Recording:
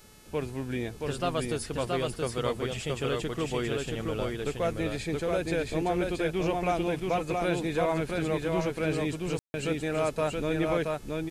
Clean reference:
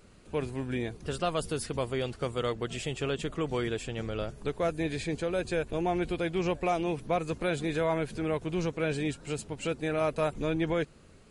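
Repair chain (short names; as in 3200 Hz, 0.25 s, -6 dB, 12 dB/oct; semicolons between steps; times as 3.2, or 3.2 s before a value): de-hum 431.5 Hz, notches 30; room tone fill 9.39–9.54; inverse comb 0.675 s -3 dB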